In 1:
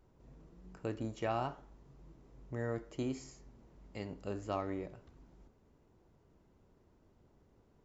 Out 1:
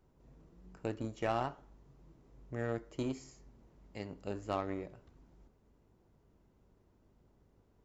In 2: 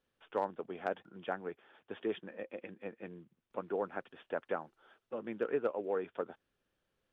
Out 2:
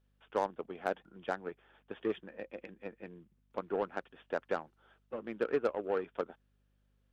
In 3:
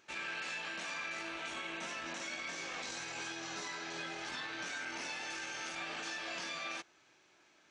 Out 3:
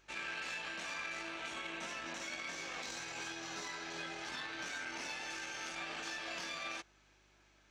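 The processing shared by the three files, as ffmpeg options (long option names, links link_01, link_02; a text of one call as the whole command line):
ffmpeg -i in.wav -af "aeval=exprs='0.0841*(cos(1*acos(clip(val(0)/0.0841,-1,1)))-cos(1*PI/2))+0.00473*(cos(7*acos(clip(val(0)/0.0841,-1,1)))-cos(7*PI/2))':channel_layout=same,aeval=exprs='val(0)+0.0002*(sin(2*PI*50*n/s)+sin(2*PI*2*50*n/s)/2+sin(2*PI*3*50*n/s)/3+sin(2*PI*4*50*n/s)/4+sin(2*PI*5*50*n/s)/5)':channel_layout=same,volume=2dB" out.wav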